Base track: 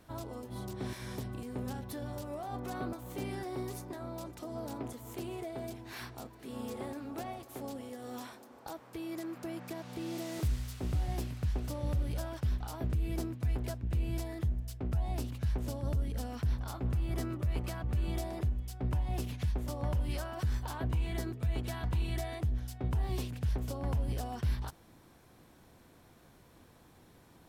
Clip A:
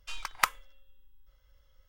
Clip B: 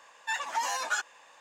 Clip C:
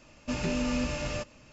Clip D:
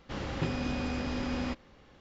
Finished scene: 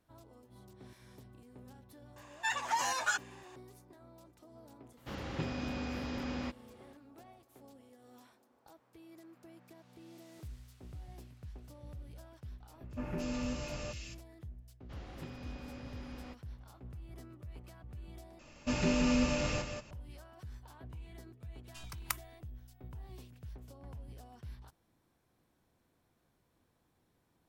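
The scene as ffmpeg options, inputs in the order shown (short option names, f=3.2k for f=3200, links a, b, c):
-filter_complex "[4:a]asplit=2[a][b];[3:a]asplit=2[c][d];[0:a]volume=-15.5dB[e];[a]highpass=50[f];[c]acrossover=split=2100[g][h];[h]adelay=220[i];[g][i]amix=inputs=2:normalize=0[j];[d]aecho=1:1:181:0.447[k];[1:a]aemphasis=mode=production:type=75kf[l];[e]asplit=2[m][n];[m]atrim=end=18.394[o];[k]atrim=end=1.52,asetpts=PTS-STARTPTS,volume=-1dB[p];[n]atrim=start=19.906[q];[2:a]atrim=end=1.4,asetpts=PTS-STARTPTS,volume=-2dB,afade=t=in:d=0.004:c=hsin,afade=t=out:st=1.396:d=0.004:c=hsin,adelay=2160[r];[f]atrim=end=2,asetpts=PTS-STARTPTS,volume=-5dB,afade=t=in:d=0.004:c=hsin,afade=t=out:st=1.996:d=0.004:c=hsin,adelay=219177S[s];[j]atrim=end=1.52,asetpts=PTS-STARTPTS,volume=-7.5dB,afade=t=in:d=0.004:c=hsin,afade=t=out:st=1.516:d=0.004:c=hsin,adelay=12690[t];[b]atrim=end=2,asetpts=PTS-STARTPTS,volume=-15dB,afade=t=in:d=0.004:c=hsin,afade=t=out:st=1.996:d=0.004:c=hsin,adelay=14800[u];[l]atrim=end=1.88,asetpts=PTS-STARTPTS,volume=-17dB,afade=t=in:d=0.004:c=hsin,afade=t=out:st=1.876:d=0.004:c=hsin,adelay=21670[v];[o][p]acrossfade=d=0.004:c1=hsin:c2=hsin[w];[w][q]acrossfade=d=0.004:c1=hsin:c2=hsin[x];[x][r][s][t][u][v]amix=inputs=6:normalize=0"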